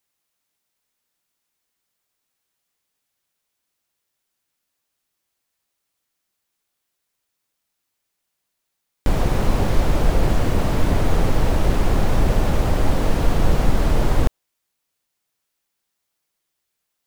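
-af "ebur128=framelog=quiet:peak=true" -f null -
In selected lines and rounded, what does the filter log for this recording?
Integrated loudness:
  I:         -21.9 LUFS
  Threshold: -31.9 LUFS
Loudness range:
  LRA:         7.9 LU
  Threshold: -43.4 LUFS
  LRA low:   -29.4 LUFS
  LRA high:  -21.5 LUFS
True peak:
  Peak:       -3.5 dBFS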